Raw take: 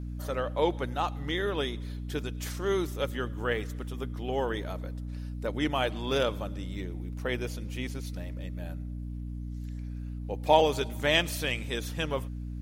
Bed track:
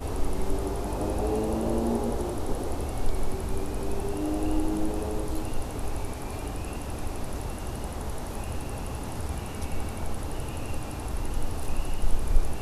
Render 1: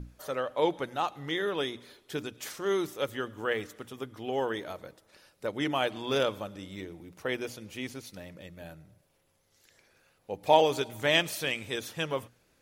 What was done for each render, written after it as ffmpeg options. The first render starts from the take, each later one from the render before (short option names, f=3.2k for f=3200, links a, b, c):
-af "bandreject=f=60:t=h:w=6,bandreject=f=120:t=h:w=6,bandreject=f=180:t=h:w=6,bandreject=f=240:t=h:w=6,bandreject=f=300:t=h:w=6"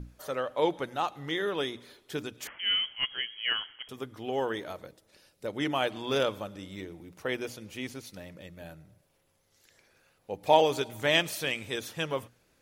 -filter_complex "[0:a]asettb=1/sr,asplit=3[a][b][c];[a]atrim=end=2.474[d];[b]atrim=start=2.47:end=3.89,asetpts=PTS-STARTPTS,afade=t=in:d=0.004:c=qsin,afade=t=out:st=1.416:d=0.004:c=qsin,lowpass=f=2.9k:t=q:w=0.5098,lowpass=f=2.9k:t=q:w=0.6013,lowpass=f=2.9k:t=q:w=0.9,lowpass=f=2.9k:t=q:w=2.563,afreqshift=-3400[e];[c]atrim=start=3.886[f];[d][e]acrossfade=d=0.004:c1=hsin:c2=qsin[g];[g][f]acrossfade=d=0.004:c1=qsin:c2=hsin,asettb=1/sr,asplit=3[h][i][j];[h]atrim=end=4.864[k];[i]atrim=start=4.86:end=5.5,asetpts=PTS-STARTPTS,afade=t=in:d=0.004:c=qsin,afade=t=out:st=0.636:d=0.004:c=qsin,equalizer=f=1.2k:t=o:w=1.6:g=-6.5[l];[j]atrim=start=5.496[m];[k][l]acrossfade=d=0.004:c1=hsin:c2=qsin[n];[n][m]acrossfade=d=0.004:c1=qsin:c2=hsin"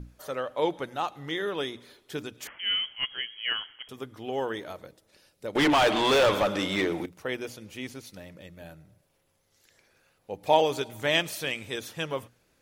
-filter_complex "[0:a]asettb=1/sr,asplit=3[a][b][c];[a]atrim=end=5.554[d];[b]atrim=start=5.55:end=7.06,asetpts=PTS-STARTPTS,afade=t=in:d=0.004:c=qsin,afade=t=out:st=1.506:d=0.004:c=qsin,asplit=2[e][f];[f]highpass=f=720:p=1,volume=30dB,asoftclip=type=tanh:threshold=-13.5dB[g];[e][g]amix=inputs=2:normalize=0,lowpass=f=2.9k:p=1,volume=-6dB[h];[c]atrim=start=7.056[i];[d][h]acrossfade=d=0.004:c1=hsin:c2=qsin[j];[j][i]acrossfade=d=0.004:c1=qsin:c2=hsin"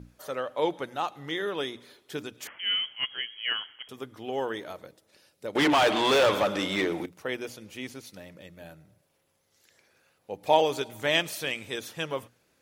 -af "highpass=f=120:p=1"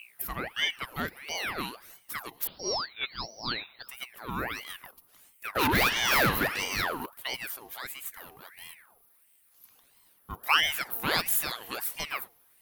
-af "aexciter=amount=14:drive=4.1:freq=11k,aeval=exprs='val(0)*sin(2*PI*1600*n/s+1600*0.65/1.5*sin(2*PI*1.5*n/s))':c=same"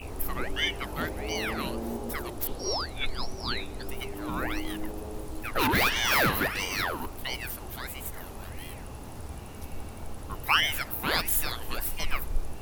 -filter_complex "[1:a]volume=-7.5dB[a];[0:a][a]amix=inputs=2:normalize=0"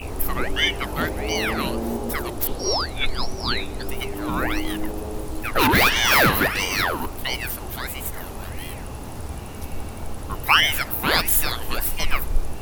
-af "volume=7.5dB,alimiter=limit=-2dB:level=0:latency=1"